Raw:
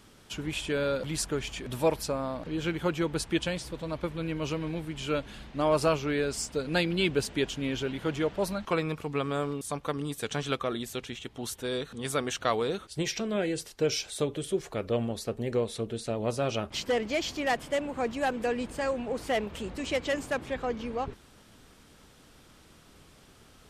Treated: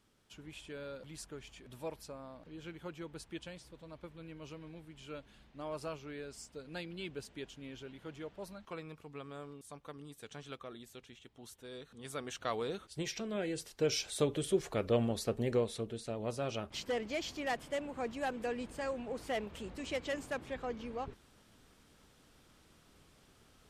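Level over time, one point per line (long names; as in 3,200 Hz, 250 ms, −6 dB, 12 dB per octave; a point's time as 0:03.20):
0:11.68 −16.5 dB
0:12.63 −8 dB
0:13.37 −8 dB
0:14.30 −1.5 dB
0:15.43 −1.5 dB
0:16.00 −8 dB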